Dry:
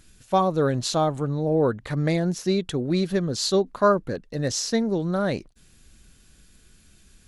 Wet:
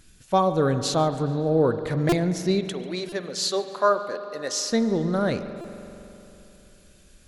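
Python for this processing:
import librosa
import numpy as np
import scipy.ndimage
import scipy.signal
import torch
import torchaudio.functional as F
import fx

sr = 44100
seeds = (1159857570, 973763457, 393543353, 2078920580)

y = fx.highpass(x, sr, hz=510.0, slope=12, at=(2.65, 4.7))
y = fx.echo_feedback(y, sr, ms=143, feedback_pct=54, wet_db=-21.5)
y = fx.rev_spring(y, sr, rt60_s=3.2, pass_ms=(44,), chirp_ms=25, drr_db=10.0)
y = fx.buffer_glitch(y, sr, at_s=(2.09, 3.09, 5.61), block=128, repeats=10)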